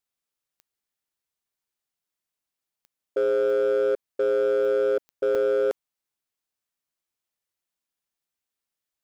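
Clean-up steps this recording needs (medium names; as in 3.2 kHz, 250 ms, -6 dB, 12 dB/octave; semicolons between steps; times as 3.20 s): clip repair -18.5 dBFS; de-click; interpolate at 4.17/5.35 s, 3.7 ms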